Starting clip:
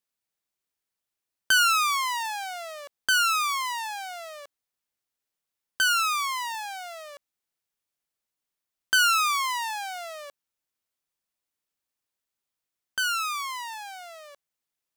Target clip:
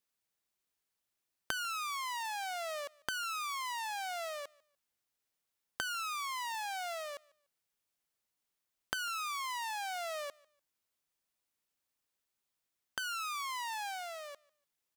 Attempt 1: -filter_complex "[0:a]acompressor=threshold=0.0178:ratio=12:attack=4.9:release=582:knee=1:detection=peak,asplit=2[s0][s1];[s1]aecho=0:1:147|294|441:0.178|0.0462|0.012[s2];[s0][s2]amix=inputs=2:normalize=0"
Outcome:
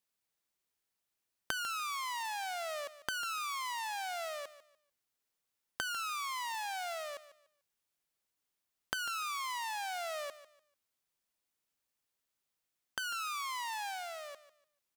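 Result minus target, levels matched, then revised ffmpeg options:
echo-to-direct +10 dB
-filter_complex "[0:a]acompressor=threshold=0.0178:ratio=12:attack=4.9:release=582:knee=1:detection=peak,asplit=2[s0][s1];[s1]aecho=0:1:147|294:0.0562|0.0146[s2];[s0][s2]amix=inputs=2:normalize=0"

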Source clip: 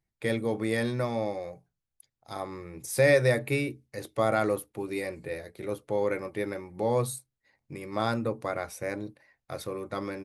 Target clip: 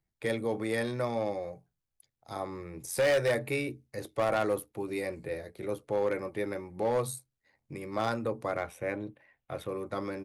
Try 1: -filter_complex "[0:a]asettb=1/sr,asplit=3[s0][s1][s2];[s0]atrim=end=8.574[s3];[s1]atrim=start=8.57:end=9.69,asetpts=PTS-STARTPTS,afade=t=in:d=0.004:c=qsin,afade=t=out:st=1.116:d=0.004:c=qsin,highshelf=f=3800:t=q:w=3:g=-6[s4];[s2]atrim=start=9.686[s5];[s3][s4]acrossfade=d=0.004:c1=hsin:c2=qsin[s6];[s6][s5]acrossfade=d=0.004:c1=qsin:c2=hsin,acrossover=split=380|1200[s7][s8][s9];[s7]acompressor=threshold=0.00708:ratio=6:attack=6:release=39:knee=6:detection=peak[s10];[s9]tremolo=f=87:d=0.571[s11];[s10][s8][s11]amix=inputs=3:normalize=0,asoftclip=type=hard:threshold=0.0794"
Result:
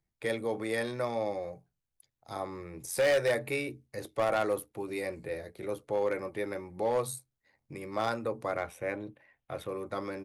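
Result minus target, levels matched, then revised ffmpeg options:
compression: peak gain reduction +5.5 dB
-filter_complex "[0:a]asettb=1/sr,asplit=3[s0][s1][s2];[s0]atrim=end=8.574[s3];[s1]atrim=start=8.57:end=9.69,asetpts=PTS-STARTPTS,afade=t=in:d=0.004:c=qsin,afade=t=out:st=1.116:d=0.004:c=qsin,highshelf=f=3800:t=q:w=3:g=-6[s4];[s2]atrim=start=9.686[s5];[s3][s4]acrossfade=d=0.004:c1=hsin:c2=qsin[s6];[s6][s5]acrossfade=d=0.004:c1=qsin:c2=hsin,acrossover=split=380|1200[s7][s8][s9];[s7]acompressor=threshold=0.015:ratio=6:attack=6:release=39:knee=6:detection=peak[s10];[s9]tremolo=f=87:d=0.571[s11];[s10][s8][s11]amix=inputs=3:normalize=0,asoftclip=type=hard:threshold=0.0794"

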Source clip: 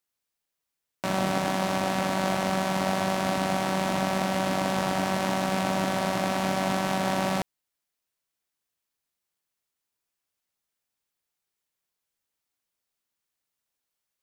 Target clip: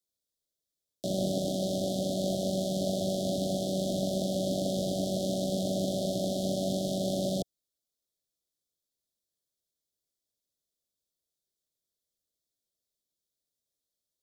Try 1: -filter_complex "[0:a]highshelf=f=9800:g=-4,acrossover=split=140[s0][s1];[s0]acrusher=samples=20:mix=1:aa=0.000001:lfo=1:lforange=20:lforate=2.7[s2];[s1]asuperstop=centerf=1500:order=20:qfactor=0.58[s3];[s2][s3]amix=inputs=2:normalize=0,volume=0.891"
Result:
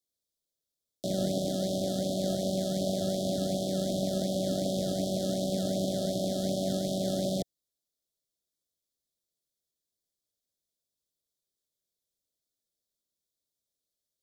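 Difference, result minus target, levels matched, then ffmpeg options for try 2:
decimation with a swept rate: distortion +11 dB
-filter_complex "[0:a]highshelf=f=9800:g=-4,acrossover=split=140[s0][s1];[s0]acrusher=samples=6:mix=1:aa=0.000001:lfo=1:lforange=6:lforate=2.7[s2];[s1]asuperstop=centerf=1500:order=20:qfactor=0.58[s3];[s2][s3]amix=inputs=2:normalize=0,volume=0.891"

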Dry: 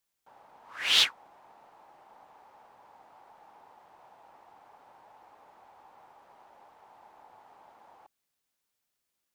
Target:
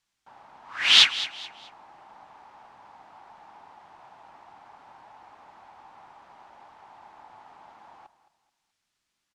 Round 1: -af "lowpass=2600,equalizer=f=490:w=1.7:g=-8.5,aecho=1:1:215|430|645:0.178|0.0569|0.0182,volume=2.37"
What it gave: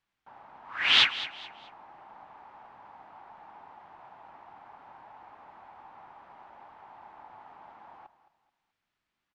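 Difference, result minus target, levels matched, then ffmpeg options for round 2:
8 kHz band -8.5 dB
-af "lowpass=6500,equalizer=f=490:w=1.7:g=-8.5,aecho=1:1:215|430|645:0.178|0.0569|0.0182,volume=2.37"

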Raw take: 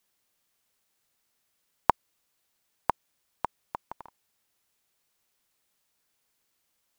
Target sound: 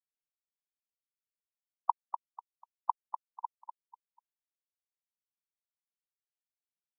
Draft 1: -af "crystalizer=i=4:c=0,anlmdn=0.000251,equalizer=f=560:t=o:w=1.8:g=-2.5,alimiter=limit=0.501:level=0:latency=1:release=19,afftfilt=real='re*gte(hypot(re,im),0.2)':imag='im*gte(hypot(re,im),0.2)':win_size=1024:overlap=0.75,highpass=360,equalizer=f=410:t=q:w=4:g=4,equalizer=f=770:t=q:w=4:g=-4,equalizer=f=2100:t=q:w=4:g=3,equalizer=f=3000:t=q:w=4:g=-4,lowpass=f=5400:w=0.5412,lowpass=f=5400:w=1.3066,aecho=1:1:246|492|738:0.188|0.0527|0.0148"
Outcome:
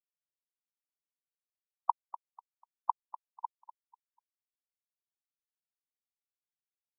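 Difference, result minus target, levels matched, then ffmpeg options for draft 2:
echo-to-direct -6.5 dB
-af "crystalizer=i=4:c=0,anlmdn=0.000251,equalizer=f=560:t=o:w=1.8:g=-2.5,alimiter=limit=0.501:level=0:latency=1:release=19,afftfilt=real='re*gte(hypot(re,im),0.2)':imag='im*gte(hypot(re,im),0.2)':win_size=1024:overlap=0.75,highpass=360,equalizer=f=410:t=q:w=4:g=4,equalizer=f=770:t=q:w=4:g=-4,equalizer=f=2100:t=q:w=4:g=3,equalizer=f=3000:t=q:w=4:g=-4,lowpass=f=5400:w=0.5412,lowpass=f=5400:w=1.3066,aecho=1:1:246|492|738:0.398|0.111|0.0312"

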